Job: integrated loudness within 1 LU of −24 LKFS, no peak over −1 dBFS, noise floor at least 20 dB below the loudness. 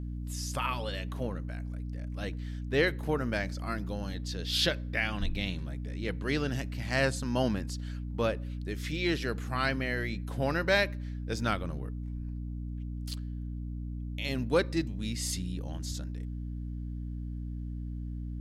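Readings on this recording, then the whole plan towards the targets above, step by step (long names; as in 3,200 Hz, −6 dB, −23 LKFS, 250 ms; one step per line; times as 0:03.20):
mains hum 60 Hz; hum harmonics up to 300 Hz; level of the hum −34 dBFS; integrated loudness −33.0 LKFS; sample peak −12.5 dBFS; target loudness −24.0 LKFS
→ hum removal 60 Hz, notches 5
level +9 dB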